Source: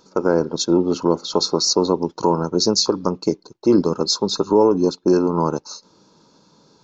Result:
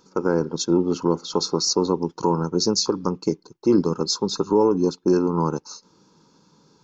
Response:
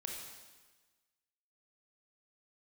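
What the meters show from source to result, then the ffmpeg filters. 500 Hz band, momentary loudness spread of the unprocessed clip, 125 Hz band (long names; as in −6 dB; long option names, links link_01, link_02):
−3.5 dB, 6 LU, −0.5 dB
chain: -af "equalizer=frequency=160:width_type=o:width=0.33:gain=3,equalizer=frequency=630:width_type=o:width=0.33:gain=-10,equalizer=frequency=4000:width_type=o:width=0.33:gain=-5,volume=-2.5dB"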